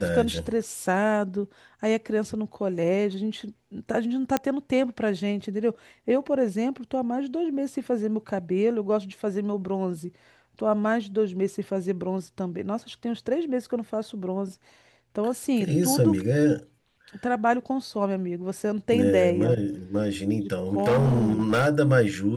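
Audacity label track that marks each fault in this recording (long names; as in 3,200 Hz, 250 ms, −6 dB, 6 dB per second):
4.370000	4.370000	click −10 dBFS
20.520000	21.680000	clipping −17.5 dBFS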